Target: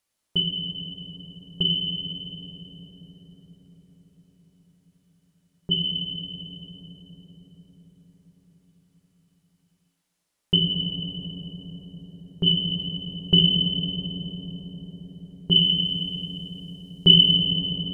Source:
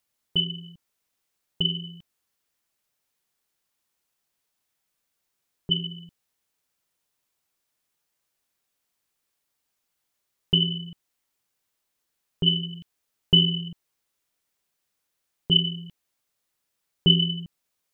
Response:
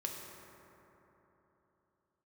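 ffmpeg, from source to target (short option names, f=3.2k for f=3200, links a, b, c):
-filter_complex "[0:a]asettb=1/sr,asplit=3[a][b][c];[a]atrim=end=15.614[d];[b]atrim=start=15.61:end=17.34,asetpts=PTS-STARTPTS,afade=t=in:d=0.004:c=qsin,afade=t=out:st=1.726:d=0.004:c=qsin,highshelf=f=2.5k:g=9.5[e];[c]atrim=start=17.336[f];[d][e]acrossfade=d=0.004:c1=hsin:c2=qsin[g];[g][f]acrossfade=d=0.004:c1=qsin:c2=hsin[h];[1:a]atrim=start_sample=2205,asetrate=22932,aresample=44100[i];[h][i]afir=irnorm=-1:irlink=0,volume=-1dB"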